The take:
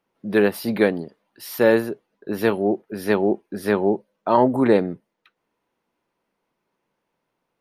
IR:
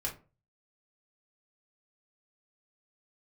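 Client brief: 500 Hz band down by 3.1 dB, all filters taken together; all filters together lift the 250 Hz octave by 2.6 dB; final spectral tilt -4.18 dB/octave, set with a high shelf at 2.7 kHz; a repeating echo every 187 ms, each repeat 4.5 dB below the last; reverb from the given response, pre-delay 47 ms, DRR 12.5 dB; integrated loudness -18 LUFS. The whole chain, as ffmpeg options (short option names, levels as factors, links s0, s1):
-filter_complex "[0:a]equalizer=f=250:t=o:g=5,equalizer=f=500:t=o:g=-5.5,highshelf=f=2700:g=-4,aecho=1:1:187|374|561|748|935|1122|1309|1496|1683:0.596|0.357|0.214|0.129|0.0772|0.0463|0.0278|0.0167|0.01,asplit=2[s0][s1];[1:a]atrim=start_sample=2205,adelay=47[s2];[s1][s2]afir=irnorm=-1:irlink=0,volume=0.178[s3];[s0][s3]amix=inputs=2:normalize=0,volume=1.26"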